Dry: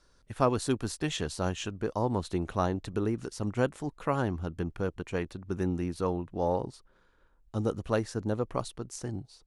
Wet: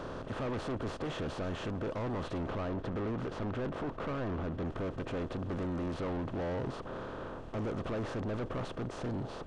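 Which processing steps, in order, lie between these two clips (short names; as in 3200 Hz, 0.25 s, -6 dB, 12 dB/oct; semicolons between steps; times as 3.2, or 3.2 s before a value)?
per-bin compression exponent 0.4; 2.41–4.65 high shelf 6000 Hz -10 dB; soft clip -31.5 dBFS, distortion -3 dB; tape spacing loss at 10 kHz 25 dB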